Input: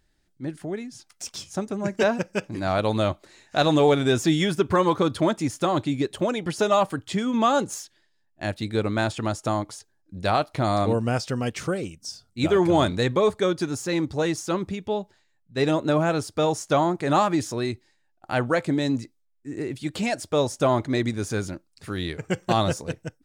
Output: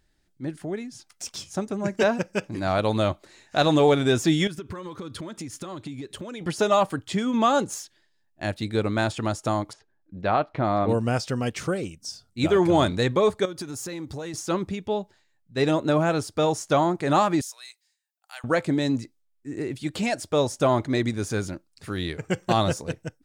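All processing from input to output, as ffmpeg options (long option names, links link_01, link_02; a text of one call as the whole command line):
ffmpeg -i in.wav -filter_complex "[0:a]asettb=1/sr,asplit=3[link_01][link_02][link_03];[link_01]atrim=end=4.474[link_04];[link_02]atrim=start=4.47:end=6.41,asetpts=PTS-STARTPTS,afade=type=in:duration=0.004:curve=qsin,afade=type=out:start_time=1.936:duration=0.004:curve=qsin,equalizer=frequency=740:width_type=o:width=0.72:gain=-8,acompressor=threshold=-31dB:ratio=16:attack=3.2:release=140:knee=1:detection=peak[link_05];[link_03]atrim=start=6.406[link_06];[link_04][link_05]acrossfade=duration=0.004:curve1=hsin:curve2=qsin[link_07];[link_07][link_06]acrossfade=duration=0.004:curve1=qsin:curve2=hsin,asettb=1/sr,asplit=3[link_08][link_09][link_10];[link_08]atrim=end=9.734[link_11];[link_09]atrim=start=9.73:end=10.89,asetpts=PTS-STARTPTS,afade=type=in:duration=0.004:curve=qsin,afade=type=out:start_time=1.156:duration=0.004:curve=qsin,lowpass=2300,equalizer=frequency=86:width_type=o:width=0.95:gain=-5[link_12];[link_10]atrim=start=10.886[link_13];[link_11][link_12]acrossfade=duration=0.004:curve1=hsin:curve2=qsin[link_14];[link_14][link_13]acrossfade=duration=0.004:curve1=qsin:curve2=hsin,asettb=1/sr,asplit=3[link_15][link_16][link_17];[link_15]atrim=end=13.454[link_18];[link_16]atrim=start=13.45:end=14.34,asetpts=PTS-STARTPTS,afade=type=in:duration=0.004:curve=qsin,afade=type=out:start_time=0.886:duration=0.004:curve=qsin,highshelf=frequency=11000:gain=11.5,acompressor=threshold=-30dB:ratio=8:attack=3.2:release=140:knee=1:detection=peak[link_19];[link_17]atrim=start=14.336[link_20];[link_18][link_19]acrossfade=duration=0.004:curve1=hsin:curve2=qsin[link_21];[link_21][link_20]acrossfade=duration=0.004:curve1=qsin:curve2=hsin,asettb=1/sr,asplit=3[link_22][link_23][link_24];[link_22]atrim=end=17.414[link_25];[link_23]atrim=start=17.41:end=18.44,asetpts=PTS-STARTPTS,afade=type=in:duration=0.004:curve=qsin,afade=type=out:start_time=1.026:duration=0.004:curve=qsin,highpass=frequency=680:width=0.5412,highpass=frequency=680:width=1.3066,aderivative[link_26];[link_24]atrim=start=18.436[link_27];[link_25][link_26]acrossfade=duration=0.004:curve1=hsin:curve2=qsin[link_28];[link_28][link_27]acrossfade=duration=0.004:curve1=qsin:curve2=hsin" out.wav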